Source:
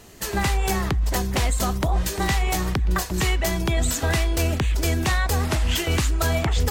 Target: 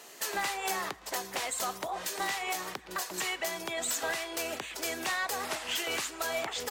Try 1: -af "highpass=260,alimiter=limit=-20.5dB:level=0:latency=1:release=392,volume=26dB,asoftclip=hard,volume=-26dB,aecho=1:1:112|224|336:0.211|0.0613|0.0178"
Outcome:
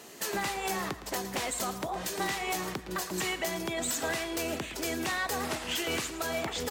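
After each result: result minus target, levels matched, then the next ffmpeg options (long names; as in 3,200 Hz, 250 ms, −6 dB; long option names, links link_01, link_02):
250 Hz band +7.5 dB; echo-to-direct +10.5 dB
-af "highpass=530,alimiter=limit=-20.5dB:level=0:latency=1:release=392,volume=26dB,asoftclip=hard,volume=-26dB,aecho=1:1:112|224|336:0.211|0.0613|0.0178"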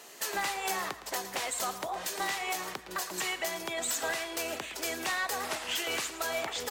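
echo-to-direct +10.5 dB
-af "highpass=530,alimiter=limit=-20.5dB:level=0:latency=1:release=392,volume=26dB,asoftclip=hard,volume=-26dB,aecho=1:1:112|224:0.0631|0.0183"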